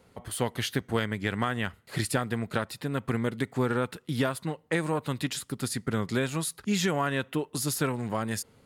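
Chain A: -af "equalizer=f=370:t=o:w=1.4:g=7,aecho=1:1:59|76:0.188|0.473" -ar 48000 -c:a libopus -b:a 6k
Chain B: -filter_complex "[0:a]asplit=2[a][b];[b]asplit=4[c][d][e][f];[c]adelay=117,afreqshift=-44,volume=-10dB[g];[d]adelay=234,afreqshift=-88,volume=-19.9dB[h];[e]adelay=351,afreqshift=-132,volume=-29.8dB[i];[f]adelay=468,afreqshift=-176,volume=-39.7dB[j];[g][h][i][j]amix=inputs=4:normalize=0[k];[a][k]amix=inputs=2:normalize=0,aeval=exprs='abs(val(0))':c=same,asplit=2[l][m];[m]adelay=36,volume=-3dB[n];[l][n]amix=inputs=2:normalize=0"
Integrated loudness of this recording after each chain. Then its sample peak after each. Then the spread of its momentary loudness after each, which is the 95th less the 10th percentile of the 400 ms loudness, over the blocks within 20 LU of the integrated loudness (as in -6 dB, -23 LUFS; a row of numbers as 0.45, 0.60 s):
-27.5, -32.0 LUFS; -10.5, -11.0 dBFS; 7, 4 LU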